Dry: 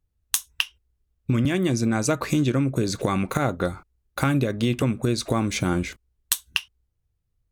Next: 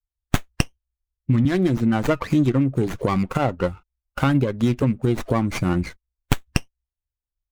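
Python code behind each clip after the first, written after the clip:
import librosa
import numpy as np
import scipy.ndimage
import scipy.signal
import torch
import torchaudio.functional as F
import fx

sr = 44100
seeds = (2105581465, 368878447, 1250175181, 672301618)

y = fx.bin_expand(x, sr, power=1.5)
y = fx.running_max(y, sr, window=9)
y = F.gain(torch.from_numpy(y), 5.0).numpy()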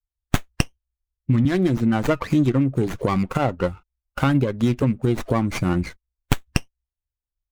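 y = x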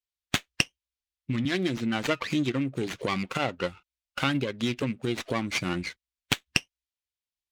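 y = fx.weighting(x, sr, curve='D')
y = F.gain(torch.from_numpy(y), -7.0).numpy()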